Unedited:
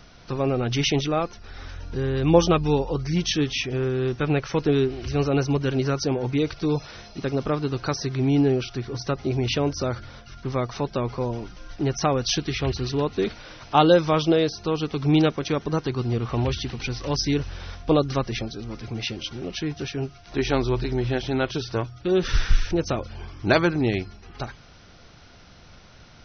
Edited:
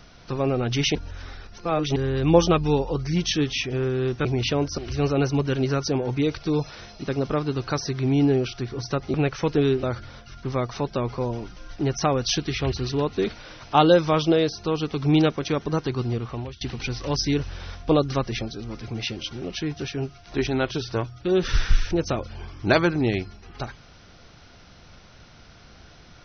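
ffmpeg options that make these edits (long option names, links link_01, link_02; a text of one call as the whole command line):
ffmpeg -i in.wav -filter_complex "[0:a]asplit=9[link_01][link_02][link_03][link_04][link_05][link_06][link_07][link_08][link_09];[link_01]atrim=end=0.952[link_10];[link_02]atrim=start=0.948:end=1.962,asetpts=PTS-STARTPTS,areverse[link_11];[link_03]atrim=start=1.958:end=4.252[link_12];[link_04]atrim=start=9.298:end=9.832[link_13];[link_05]atrim=start=4.938:end=9.302[link_14];[link_06]atrim=start=4.248:end=4.942[link_15];[link_07]atrim=start=9.828:end=16.61,asetpts=PTS-STARTPTS,afade=type=out:start_time=6.192:duration=0.59:silence=0.0749894[link_16];[link_08]atrim=start=16.61:end=20.472,asetpts=PTS-STARTPTS,afade=type=in:duration=0.004:curve=hsin:silence=0.0749894[link_17];[link_09]atrim=start=21.268[link_18];[link_10][link_11]acrossfade=duration=0.004:curve1=hsin:curve2=hsin[link_19];[link_19][link_12]acrossfade=duration=0.004:curve1=hsin:curve2=hsin[link_20];[link_20][link_13]acrossfade=duration=0.004:curve1=hsin:curve2=hsin[link_21];[link_21][link_14]acrossfade=duration=0.004:curve1=hsin:curve2=hsin[link_22];[link_22][link_15]acrossfade=duration=0.004:curve1=hsin:curve2=hsin[link_23];[link_16][link_17]concat=n=2:v=0:a=1[link_24];[link_23][link_24]acrossfade=duration=0.004:curve1=hsin:curve2=hsin[link_25];[link_25][link_18]acrossfade=duration=0.004:curve1=hsin:curve2=hsin" out.wav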